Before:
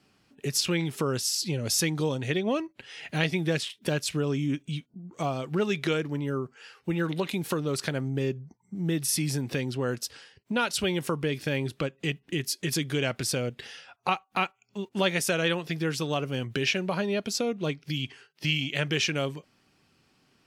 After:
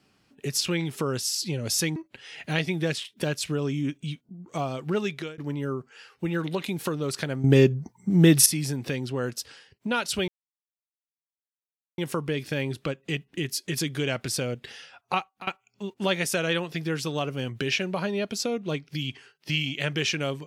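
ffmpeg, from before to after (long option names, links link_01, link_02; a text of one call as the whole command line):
ffmpeg -i in.wav -filter_complex "[0:a]asplit=7[link_01][link_02][link_03][link_04][link_05][link_06][link_07];[link_01]atrim=end=1.962[link_08];[link_02]atrim=start=2.608:end=6.03,asetpts=PTS-STARTPTS,afade=type=out:start_time=3.052:duration=0.37:silence=0.0630957[link_09];[link_03]atrim=start=6.03:end=8.092,asetpts=PTS-STARTPTS,afade=type=in:duration=0.004:curve=hsin:silence=0.0630957[link_10];[link_04]atrim=start=8.088:end=9.112,asetpts=PTS-STARTPTS,volume=11.5dB[link_11];[link_05]atrim=start=9.108:end=10.93,asetpts=PTS-STARTPTS,afade=type=out:start_time=1.818:duration=0.004:curve=hsin,apad=pad_dur=1.7[link_12];[link_06]atrim=start=10.93:end=14.42,asetpts=PTS-STARTPTS,afade=type=in:duration=0.004:curve=hsin,afade=type=out:start_time=3.2:duration=0.29:silence=0.1[link_13];[link_07]atrim=start=14.42,asetpts=PTS-STARTPTS,afade=type=in:duration=0.004:curve=hsin:silence=0.1[link_14];[link_09][link_10]concat=n=2:v=0:a=1[link_15];[link_08][link_15]acrossfade=duration=0.004:curve1=hsin:curve2=hsin[link_16];[link_16][link_11]acrossfade=duration=0.004:curve1=hsin:curve2=hsin[link_17];[link_12][link_13][link_14]concat=n=3:v=0:a=1[link_18];[link_17][link_18]acrossfade=duration=0.004:curve1=hsin:curve2=hsin" out.wav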